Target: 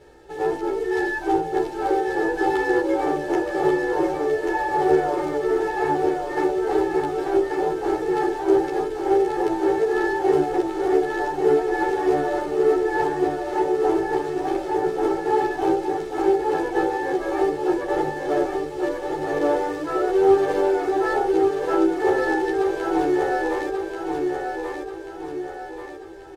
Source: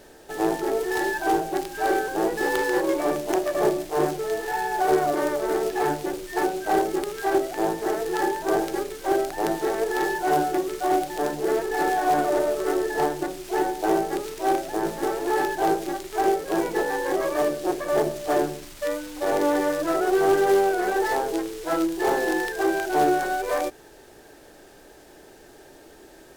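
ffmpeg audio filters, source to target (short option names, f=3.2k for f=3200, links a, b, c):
-filter_complex "[0:a]highpass=f=150:p=1,aemphasis=mode=reproduction:type=bsi,aecho=1:1:2.3:0.64,asplit=2[a][b];[b]aecho=0:1:1136|2272|3408|4544|5680|6816:0.631|0.297|0.139|0.0655|0.0308|0.0145[c];[a][c]amix=inputs=2:normalize=0,asplit=2[d][e];[e]adelay=11.6,afreqshift=-1.8[f];[d][f]amix=inputs=2:normalize=1"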